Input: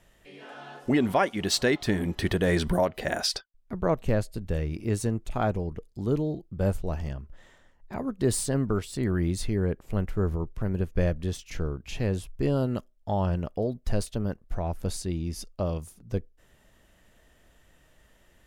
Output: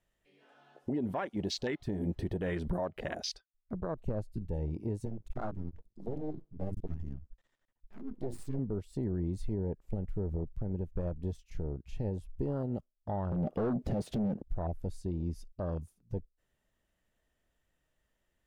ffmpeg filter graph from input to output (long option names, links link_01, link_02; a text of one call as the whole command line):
ffmpeg -i in.wav -filter_complex "[0:a]asettb=1/sr,asplit=3[link_01][link_02][link_03];[link_01]atrim=end=5.054[link_04];[link_02]atrim=start=5.05:end=8.59,asetpts=PTS-STARTPTS,afade=type=in:duration=0.004:curve=qsin,afade=type=out:start_time=3.536:duration=0.004:curve=qsin,bandreject=frequency=50:width_type=h:width=6,bandreject=frequency=100:width_type=h:width=6,bandreject=frequency=150:width_type=h:width=6,bandreject=frequency=200:width_type=h:width=6,bandreject=frequency=250:width_type=h:width=6,bandreject=frequency=300:width_type=h:width=6,bandreject=frequency=350:width_type=h:width=6,aeval=exprs='max(val(0),0)':channel_layout=same[link_05];[link_03]atrim=start=8.586[link_06];[link_04][link_05]acrossfade=duration=0.004:curve1=hsin:curve2=qsin[link_07];[link_07][link_06]acrossfade=duration=0.004:curve1=qsin:curve2=hsin,asettb=1/sr,asplit=3[link_08][link_09][link_10];[link_08]atrim=end=13.324[link_11];[link_09]atrim=start=13.32:end=14.42,asetpts=PTS-STARTPTS,afade=type=in:duration=0.004:curve=qsin,afade=type=out:start_time=1.096:duration=0.004:curve=qsin,equalizer=frequency=180:width_type=o:width=2.7:gain=15,acompressor=threshold=-28dB:ratio=8:attack=3.2:release=140:knee=1:detection=peak,asplit=2[link_12][link_13];[link_13]highpass=frequency=720:poles=1,volume=32dB,asoftclip=type=tanh:threshold=-19dB[link_14];[link_12][link_14]amix=inputs=2:normalize=0,lowpass=frequency=4500:poles=1,volume=-6dB[link_15];[link_10]atrim=start=14.416[link_16];[link_11][link_15]acrossfade=duration=0.004:curve1=hsin:curve2=qsin[link_17];[link_17][link_16]acrossfade=duration=0.004:curve1=qsin:curve2=hsin,afwtdn=0.0316,alimiter=limit=-22.5dB:level=0:latency=1:release=192,volume=-2.5dB" out.wav